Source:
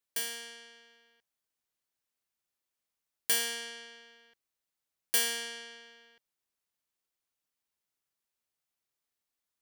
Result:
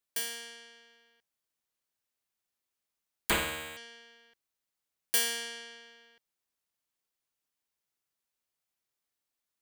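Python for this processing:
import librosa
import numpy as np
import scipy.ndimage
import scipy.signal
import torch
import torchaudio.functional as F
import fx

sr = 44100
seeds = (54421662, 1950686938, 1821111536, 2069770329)

y = fx.resample_bad(x, sr, factor=8, down='none', up='hold', at=(3.3, 3.77))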